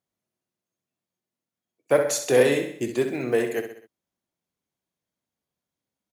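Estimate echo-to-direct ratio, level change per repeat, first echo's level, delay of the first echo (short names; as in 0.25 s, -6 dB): -8.0 dB, -6.0 dB, -9.0 dB, 64 ms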